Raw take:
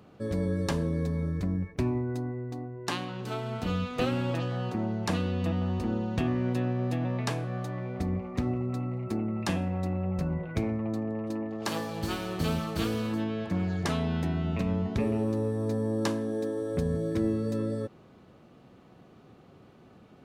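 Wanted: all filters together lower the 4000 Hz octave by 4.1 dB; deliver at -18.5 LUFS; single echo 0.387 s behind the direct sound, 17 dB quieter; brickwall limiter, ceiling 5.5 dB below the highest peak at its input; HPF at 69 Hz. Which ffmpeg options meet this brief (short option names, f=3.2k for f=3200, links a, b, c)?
-af "highpass=69,equalizer=f=4k:t=o:g=-5.5,alimiter=limit=-21.5dB:level=0:latency=1,aecho=1:1:387:0.141,volume=13.5dB"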